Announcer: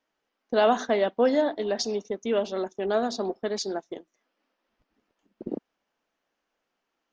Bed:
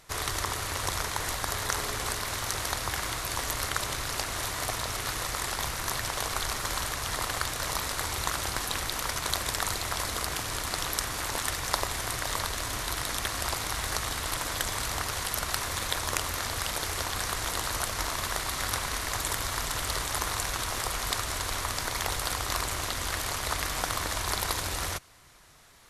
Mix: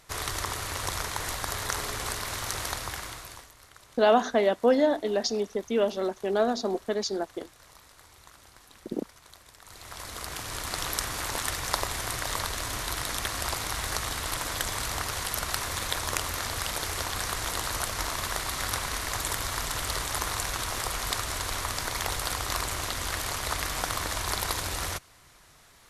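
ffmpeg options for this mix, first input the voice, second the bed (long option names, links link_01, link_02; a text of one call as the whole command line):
ffmpeg -i stem1.wav -i stem2.wav -filter_complex "[0:a]adelay=3450,volume=0.5dB[link_01];[1:a]volume=21.5dB,afade=type=out:start_time=2.65:duration=0.85:silence=0.0841395,afade=type=in:start_time=9.63:duration=1.26:silence=0.0749894[link_02];[link_01][link_02]amix=inputs=2:normalize=0" out.wav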